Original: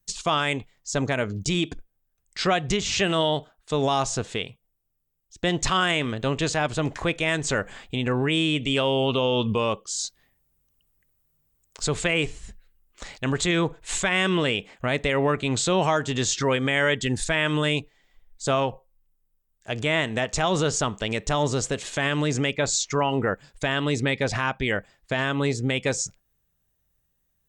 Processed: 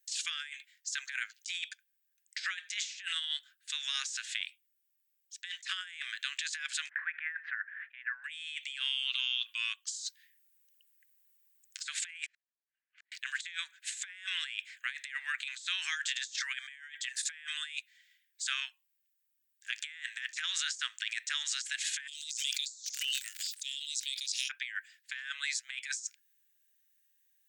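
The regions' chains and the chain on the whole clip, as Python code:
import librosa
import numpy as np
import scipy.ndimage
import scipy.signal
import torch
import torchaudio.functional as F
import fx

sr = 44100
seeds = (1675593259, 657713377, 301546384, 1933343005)

y = fx.chain(x, sr, fx.ellip_lowpass(hz=1800.0, order=4, stop_db=80),
    fx.pre_swell(db_per_s=96.0), at=(6.89, 8.24))
y = fx.chain(y, sr, fx.lowpass(hz=1400.0, slope=12),
    fx.over_compress(threshold_db=-46.0, ratio=-1.0),
    fx.gate_flip(shuts_db=-39.0, range_db=-39), at=(12.26, 13.12))
y = fx.cheby2_bandstop(y, sr, low_hz=150.0, high_hz=1700.0, order=4, stop_db=50, at=(22.06, 24.49), fade=0.02)
y = fx.dmg_crackle(y, sr, seeds[0], per_s=110.0, level_db=-50.0, at=(22.06, 24.49), fade=0.02)
y = fx.sustainer(y, sr, db_per_s=21.0, at=(22.06, 24.49), fade=0.02)
y = scipy.signal.sosfilt(scipy.signal.cheby1(5, 1.0, 1600.0, 'highpass', fs=sr, output='sos'), y)
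y = fx.dynamic_eq(y, sr, hz=2900.0, q=4.6, threshold_db=-43.0, ratio=4.0, max_db=-5)
y = fx.over_compress(y, sr, threshold_db=-35.0, ratio=-0.5)
y = y * librosa.db_to_amplitude(-1.5)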